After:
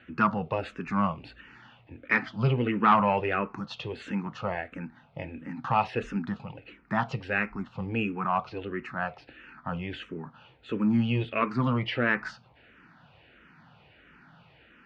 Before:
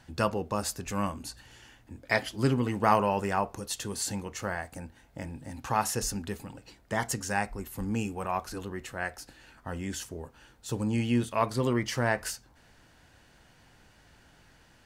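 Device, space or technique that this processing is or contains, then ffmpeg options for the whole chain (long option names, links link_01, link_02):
barber-pole phaser into a guitar amplifier: -filter_complex "[0:a]asplit=2[link_01][link_02];[link_02]afreqshift=-1.5[link_03];[link_01][link_03]amix=inputs=2:normalize=1,asoftclip=type=tanh:threshold=-19.5dB,highpass=76,equalizer=frequency=79:width_type=q:width=4:gain=-7,equalizer=frequency=160:width_type=q:width=4:gain=6,equalizer=frequency=230:width_type=q:width=4:gain=3,equalizer=frequency=1300:width_type=q:width=4:gain=7,equalizer=frequency=2500:width_type=q:width=4:gain=6,lowpass=frequency=3400:width=0.5412,lowpass=frequency=3400:width=1.3066,volume=4.5dB"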